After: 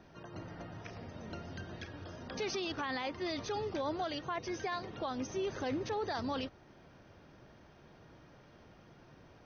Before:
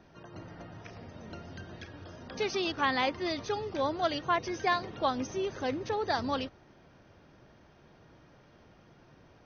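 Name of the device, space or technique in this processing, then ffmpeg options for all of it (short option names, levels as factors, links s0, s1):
stacked limiters: -af "alimiter=limit=0.0794:level=0:latency=1:release=473,alimiter=level_in=1.68:limit=0.0631:level=0:latency=1:release=10,volume=0.596"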